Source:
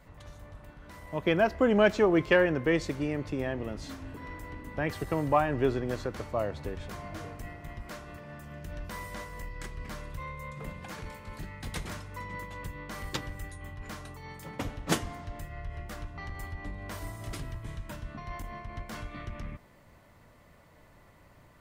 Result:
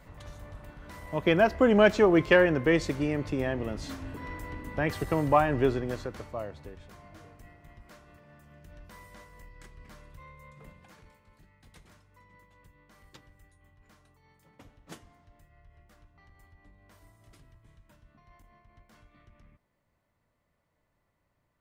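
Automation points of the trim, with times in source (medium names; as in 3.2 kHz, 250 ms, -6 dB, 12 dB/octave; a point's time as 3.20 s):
5.58 s +2.5 dB
6.87 s -10.5 dB
10.62 s -10.5 dB
11.39 s -19 dB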